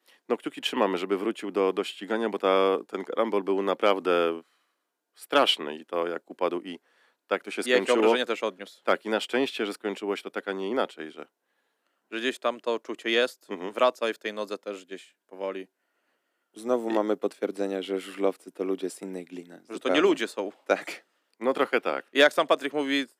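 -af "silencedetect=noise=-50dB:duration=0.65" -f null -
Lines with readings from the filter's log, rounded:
silence_start: 4.41
silence_end: 5.17 | silence_duration: 0.76
silence_start: 11.25
silence_end: 12.11 | silence_duration: 0.86
silence_start: 15.65
silence_end: 16.56 | silence_duration: 0.91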